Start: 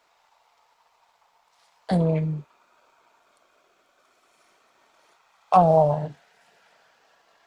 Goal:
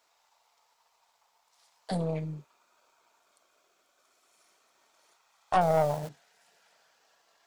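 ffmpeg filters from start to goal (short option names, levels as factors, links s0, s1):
-filter_complex "[0:a]asettb=1/sr,asplit=3[s0][s1][s2];[s0]atrim=end=5.614[s3];[s1]atrim=start=5.61:end=6.09,asetpts=PTS-STARTPTS,afade=t=in:d=0.004:c=qsin,afade=t=out:st=0.476:d=0.004:c=qsin,aeval=exprs='val(0)+0.5*0.02*sgn(val(0))':c=same[s4];[s2]atrim=start=6.086[s5];[s3][s4]acrossfade=d=0.004:c1=hsin:c2=qsin[s6];[s6][s5]acrossfade=d=0.004:c1=qsin:c2=hsin,aeval=exprs='(tanh(3.16*val(0)+0.55)-tanh(0.55))/3.16':c=same,bass=f=250:g=-3,treble=f=4000:g=9,volume=0.562"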